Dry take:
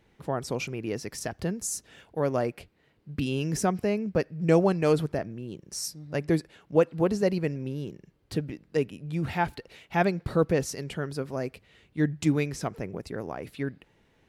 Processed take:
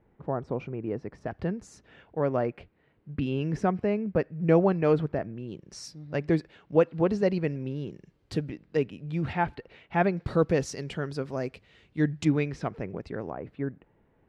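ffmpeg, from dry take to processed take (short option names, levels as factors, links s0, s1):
-af "asetnsamples=n=441:p=0,asendcmd='1.28 lowpass f 2300;5.37 lowpass f 3900;7.91 lowpass f 7400;8.49 lowpass f 4100;9.33 lowpass f 2500;10.17 lowpass f 6300;12.25 lowpass f 3200;13.31 lowpass f 1300',lowpass=1200"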